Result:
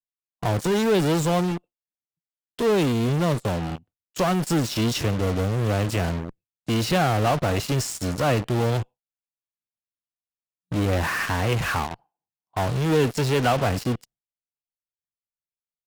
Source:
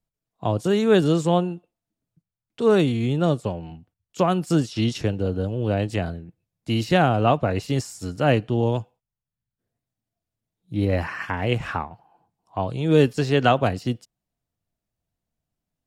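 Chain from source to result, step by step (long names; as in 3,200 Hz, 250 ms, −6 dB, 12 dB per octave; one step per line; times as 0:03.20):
noise gate with hold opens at −44 dBFS
in parallel at −3.5 dB: fuzz pedal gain 44 dB, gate −39 dBFS
on the sum: level −8 dB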